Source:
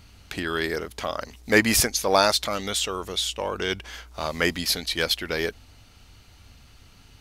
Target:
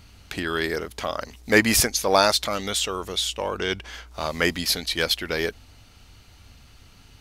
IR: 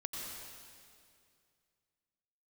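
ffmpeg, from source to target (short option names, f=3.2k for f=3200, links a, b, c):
-filter_complex "[0:a]asettb=1/sr,asplit=3[a][b][c];[a]atrim=end=3.564[d];[b]atrim=start=3.56:end=4.11,asetpts=PTS-STARTPTS,afade=t=in:d=0.004:c=qsin,afade=t=out:st=0.546:d=0.004:c=qsin,highshelf=f=9.9k:g=-7[e];[c]atrim=start=4.106[f];[d][e]acrossfade=d=0.004:c1=hsin:c2=qsin[g];[g][f]acrossfade=d=0.004:c1=qsin:c2=hsin,volume=1dB"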